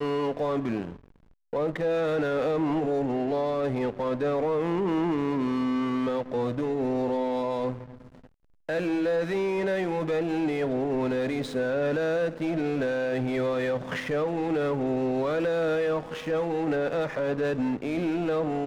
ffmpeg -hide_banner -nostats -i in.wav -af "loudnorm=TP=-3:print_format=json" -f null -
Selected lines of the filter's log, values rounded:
"input_i" : "-27.7",
"input_tp" : "-19.6",
"input_lra" : "1.1",
"input_thresh" : "-37.9",